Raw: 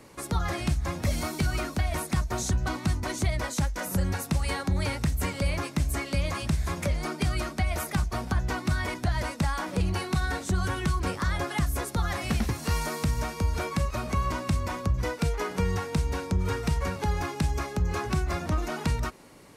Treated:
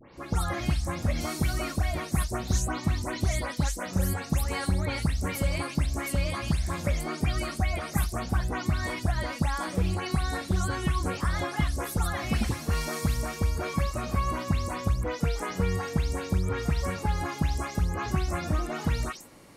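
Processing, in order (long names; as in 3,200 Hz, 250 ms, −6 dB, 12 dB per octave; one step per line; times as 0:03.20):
every frequency bin delayed by itself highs late, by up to 174 ms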